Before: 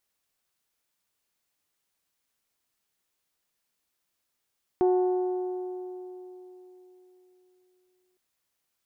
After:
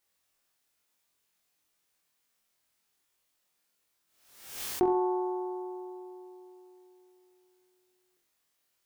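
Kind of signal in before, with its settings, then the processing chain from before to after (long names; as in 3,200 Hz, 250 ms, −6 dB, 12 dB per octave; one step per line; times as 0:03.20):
struck metal bell, length 3.36 s, lowest mode 366 Hz, modes 6, decay 3.77 s, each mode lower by 9.5 dB, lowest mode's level −18.5 dB
low-shelf EQ 240 Hz −3 dB
on a send: flutter between parallel walls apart 3.9 metres, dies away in 0.41 s
on the sum: background raised ahead of every attack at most 73 dB per second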